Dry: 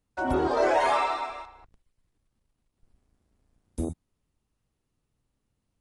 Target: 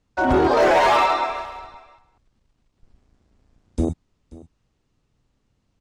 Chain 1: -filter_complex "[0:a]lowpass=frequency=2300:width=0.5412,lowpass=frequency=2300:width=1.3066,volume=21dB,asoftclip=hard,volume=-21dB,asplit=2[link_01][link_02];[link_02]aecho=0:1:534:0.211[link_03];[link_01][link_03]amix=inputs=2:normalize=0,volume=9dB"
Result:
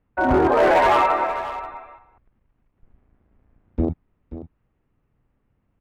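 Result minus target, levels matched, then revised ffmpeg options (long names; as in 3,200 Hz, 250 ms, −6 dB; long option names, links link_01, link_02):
8,000 Hz band −6.5 dB; echo-to-direct +7 dB
-filter_complex "[0:a]lowpass=frequency=7200:width=0.5412,lowpass=frequency=7200:width=1.3066,volume=21dB,asoftclip=hard,volume=-21dB,asplit=2[link_01][link_02];[link_02]aecho=0:1:534:0.0944[link_03];[link_01][link_03]amix=inputs=2:normalize=0,volume=9dB"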